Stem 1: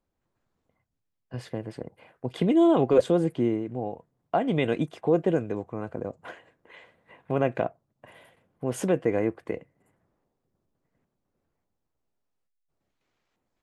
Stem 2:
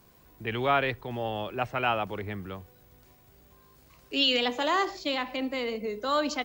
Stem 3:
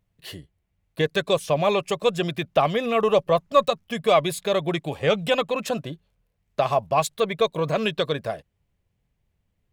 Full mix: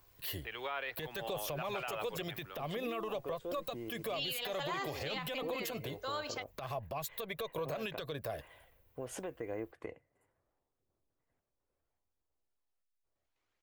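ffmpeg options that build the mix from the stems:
-filter_complex "[0:a]acompressor=threshold=0.0398:ratio=6,adelay=350,volume=0.473[s0];[1:a]highpass=f=650:p=1,volume=0.501[s1];[2:a]acrossover=split=190[s2][s3];[s3]acompressor=threshold=0.0398:ratio=6[s4];[s2][s4]amix=inputs=2:normalize=0,aexciter=amount=8.2:drive=3.1:freq=12000,volume=1.33[s5];[s0][s5]amix=inputs=2:normalize=0,acompressor=threshold=0.0355:ratio=6,volume=1[s6];[s1][s6]amix=inputs=2:normalize=0,equalizer=f=180:w=1.3:g=-11,aphaser=in_gain=1:out_gain=1:delay=2.2:decay=0.23:speed=0.73:type=triangular,alimiter=level_in=1.78:limit=0.0631:level=0:latency=1:release=72,volume=0.562"

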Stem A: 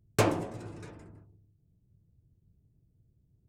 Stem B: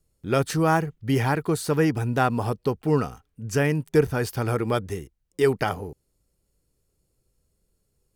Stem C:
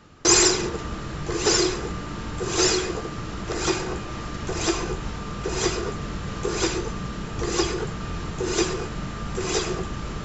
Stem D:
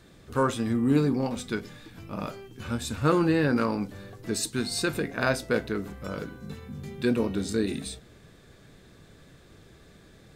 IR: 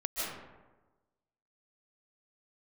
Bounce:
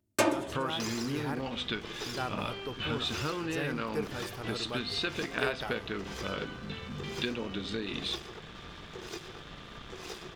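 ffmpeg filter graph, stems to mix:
-filter_complex "[0:a]highpass=150,aecho=1:1:3.3:1,volume=0.891[s0];[1:a]dynaudnorm=f=150:g=13:m=3.76,volume=0.112,asplit=3[s1][s2][s3];[s1]atrim=end=1.46,asetpts=PTS-STARTPTS,afade=t=out:st=1.456:d=0.004:c=hsin[s4];[s2]atrim=start=1.46:end=2.06,asetpts=PTS-STARTPTS,volume=0[s5];[s3]atrim=start=2.06,asetpts=PTS-STARTPTS,afade=t=in:d=0.004:c=hsin[s6];[s4][s5][s6]concat=n=3:v=0:a=1[s7];[2:a]lowpass=f=5600:w=0.5412,lowpass=f=5600:w=1.3066,acompressor=threshold=0.0282:ratio=2.5,aeval=exprs='sgn(val(0))*max(abs(val(0))-0.0141,0)':c=same,adelay=550,volume=0.501[s8];[3:a]acompressor=threshold=0.0251:ratio=6,lowpass=f=3200:t=q:w=4.3,adelay=200,volume=1.33[s9];[s0][s7][s8][s9]amix=inputs=4:normalize=0,lowshelf=f=420:g=-5.5"

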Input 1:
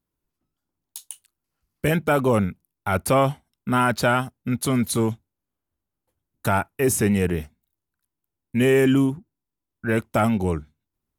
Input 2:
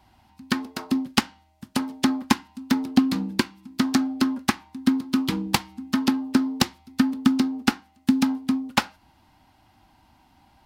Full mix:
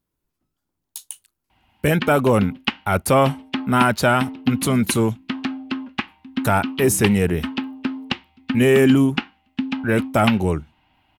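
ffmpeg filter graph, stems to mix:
-filter_complex "[0:a]volume=1.41[s0];[1:a]lowpass=f=2800:t=q:w=3.3,adelay=1500,volume=0.562[s1];[s0][s1]amix=inputs=2:normalize=0"

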